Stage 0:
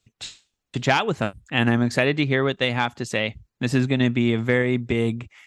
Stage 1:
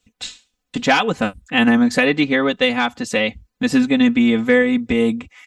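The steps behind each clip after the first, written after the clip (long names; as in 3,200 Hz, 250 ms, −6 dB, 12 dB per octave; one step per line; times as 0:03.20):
comb filter 4 ms, depth 90%
level +2.5 dB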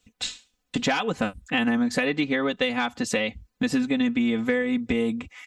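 downward compressor 4 to 1, threshold −22 dBFS, peak gain reduction 11 dB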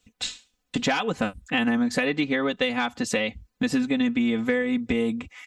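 no processing that can be heard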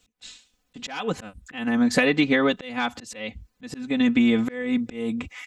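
volume swells 349 ms
level +4.5 dB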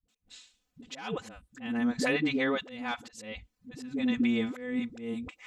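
all-pass dispersion highs, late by 84 ms, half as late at 330 Hz
level −8 dB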